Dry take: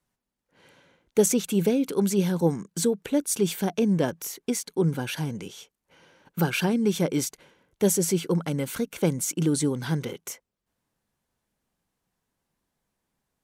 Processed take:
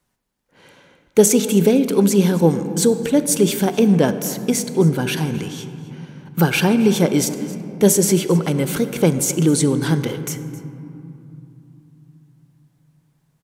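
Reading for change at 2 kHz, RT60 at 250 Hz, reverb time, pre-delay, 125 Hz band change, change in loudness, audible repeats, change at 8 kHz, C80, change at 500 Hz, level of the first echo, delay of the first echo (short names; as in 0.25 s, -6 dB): +8.5 dB, 4.2 s, 3.0 s, 18 ms, +8.5 dB, +8.5 dB, 1, +8.0 dB, 11.0 dB, +8.5 dB, -18.5 dB, 0.264 s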